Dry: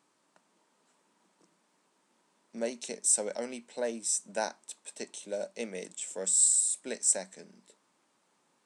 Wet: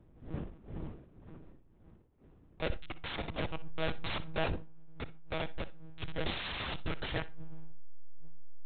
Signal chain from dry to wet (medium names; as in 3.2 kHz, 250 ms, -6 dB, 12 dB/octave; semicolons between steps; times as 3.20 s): send-on-delta sampling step -26 dBFS; wind noise 210 Hz -47 dBFS; treble shelf 2 kHz +9 dB; in parallel at -11 dB: saturation -20 dBFS, distortion -7 dB; on the sum: band-stop 800 Hz, Q 19; monotone LPC vocoder at 8 kHz 160 Hz; flutter echo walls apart 10.5 m, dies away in 0.21 s; on a send at -20 dB: reverberation RT60 0.35 s, pre-delay 10 ms; on the sum: decay stretcher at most 110 dB/s; trim -4 dB